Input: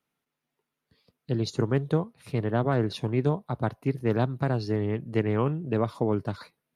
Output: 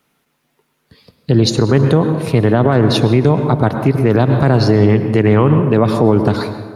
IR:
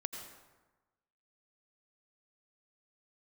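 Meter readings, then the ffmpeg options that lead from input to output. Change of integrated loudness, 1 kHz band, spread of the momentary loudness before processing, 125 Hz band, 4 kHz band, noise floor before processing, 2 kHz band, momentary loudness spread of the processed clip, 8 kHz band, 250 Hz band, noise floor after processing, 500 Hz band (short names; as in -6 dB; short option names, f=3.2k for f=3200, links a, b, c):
+15.0 dB, +14.0 dB, 5 LU, +15.0 dB, +18.0 dB, -85 dBFS, +14.0 dB, 3 LU, n/a, +15.0 dB, -66 dBFS, +14.5 dB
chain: -filter_complex "[0:a]asplit=2[a][b];[1:a]atrim=start_sample=2205,asetrate=37044,aresample=44100[c];[b][c]afir=irnorm=-1:irlink=0,volume=-2dB[d];[a][d]amix=inputs=2:normalize=0,alimiter=level_in=15dB:limit=-1dB:release=50:level=0:latency=1,volume=-1dB"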